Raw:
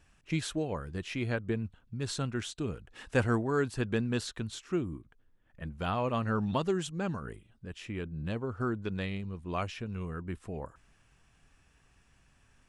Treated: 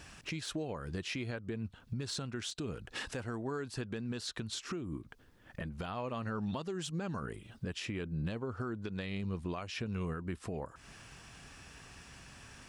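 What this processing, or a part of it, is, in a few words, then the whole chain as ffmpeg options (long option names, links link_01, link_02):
broadcast voice chain: -af "highpass=frequency=93:poles=1,deesser=0.9,acompressor=threshold=-49dB:ratio=4,equalizer=frequency=4800:width_type=o:width=0.72:gain=5,alimiter=level_in=19dB:limit=-24dB:level=0:latency=1:release=208,volume=-19dB,volume=14dB"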